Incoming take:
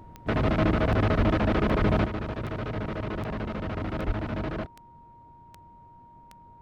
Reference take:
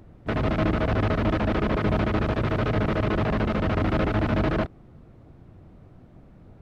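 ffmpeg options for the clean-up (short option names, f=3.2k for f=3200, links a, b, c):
-filter_complex "[0:a]adeclick=t=4,bandreject=f=940:w=30,asplit=3[a][b][c];[a]afade=t=out:st=1.17:d=0.02[d];[b]highpass=f=140:w=0.5412,highpass=f=140:w=1.3066,afade=t=in:st=1.17:d=0.02,afade=t=out:st=1.29:d=0.02[e];[c]afade=t=in:st=1.29:d=0.02[f];[d][e][f]amix=inputs=3:normalize=0,asplit=3[g][h][i];[g]afade=t=out:st=1.78:d=0.02[j];[h]highpass=f=140:w=0.5412,highpass=f=140:w=1.3066,afade=t=in:st=1.78:d=0.02,afade=t=out:st=1.9:d=0.02[k];[i]afade=t=in:st=1.9:d=0.02[l];[j][k][l]amix=inputs=3:normalize=0,asplit=3[m][n][o];[m]afade=t=out:st=4.06:d=0.02[p];[n]highpass=f=140:w=0.5412,highpass=f=140:w=1.3066,afade=t=in:st=4.06:d=0.02,afade=t=out:st=4.18:d=0.02[q];[o]afade=t=in:st=4.18:d=0.02[r];[p][q][r]amix=inputs=3:normalize=0,asetnsamples=n=441:p=0,asendcmd='2.06 volume volume 8dB',volume=0dB"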